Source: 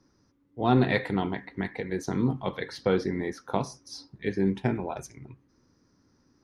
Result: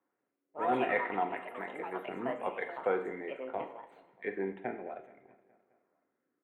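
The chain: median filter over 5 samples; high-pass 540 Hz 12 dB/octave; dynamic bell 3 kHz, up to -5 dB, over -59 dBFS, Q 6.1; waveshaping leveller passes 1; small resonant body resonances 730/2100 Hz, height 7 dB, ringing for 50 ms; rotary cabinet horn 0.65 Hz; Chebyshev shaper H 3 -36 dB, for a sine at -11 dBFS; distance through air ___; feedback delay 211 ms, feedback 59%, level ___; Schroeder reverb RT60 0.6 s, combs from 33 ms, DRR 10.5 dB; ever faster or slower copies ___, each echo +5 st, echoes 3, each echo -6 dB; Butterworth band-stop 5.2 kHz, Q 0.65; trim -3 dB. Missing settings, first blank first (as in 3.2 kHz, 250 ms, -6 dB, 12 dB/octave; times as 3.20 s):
160 m, -20 dB, 114 ms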